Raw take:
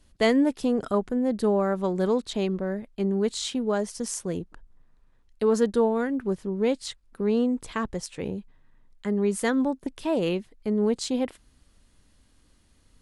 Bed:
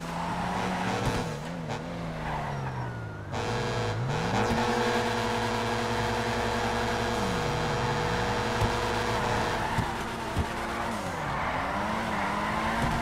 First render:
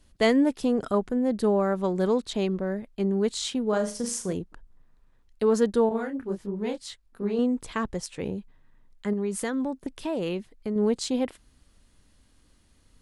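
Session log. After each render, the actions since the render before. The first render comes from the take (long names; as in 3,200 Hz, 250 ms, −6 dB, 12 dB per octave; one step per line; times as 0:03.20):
0:03.69–0:04.33: flutter between parallel walls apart 6.5 metres, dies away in 0.33 s
0:05.89–0:07.39: micro pitch shift up and down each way 57 cents
0:09.13–0:10.76: downward compressor 2.5 to 1, threshold −26 dBFS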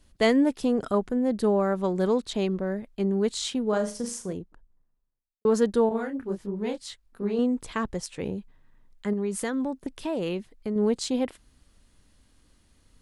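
0:03.63–0:05.45: fade out and dull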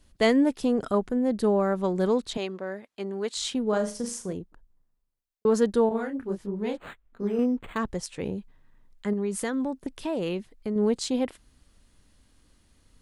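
0:02.37–0:03.37: meter weighting curve A
0:06.77–0:07.78: linearly interpolated sample-rate reduction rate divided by 8×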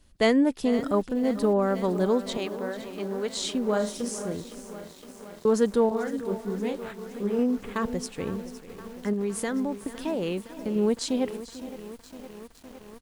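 single-tap delay 443 ms −16 dB
feedback echo at a low word length 512 ms, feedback 80%, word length 7 bits, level −14.5 dB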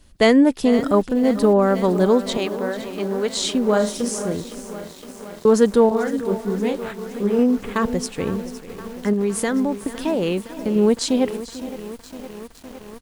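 level +7.5 dB
brickwall limiter −2 dBFS, peak gain reduction 1.5 dB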